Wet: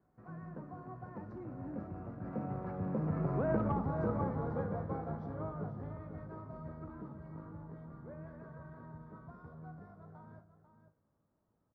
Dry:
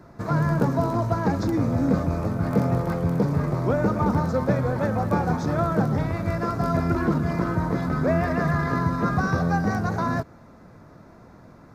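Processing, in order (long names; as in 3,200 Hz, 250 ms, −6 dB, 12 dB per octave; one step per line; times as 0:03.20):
source passing by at 0:03.63, 27 m/s, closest 2.4 metres
low-pass filter 1,500 Hz 12 dB per octave
single-tap delay 494 ms −10.5 dB
harmonic generator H 3 −16 dB, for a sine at −8.5 dBFS
downward compressor 8 to 1, threshold −42 dBFS, peak gain reduction 18 dB
tuned comb filter 53 Hz, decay 0.39 s, harmonics all, mix 60%
level +16.5 dB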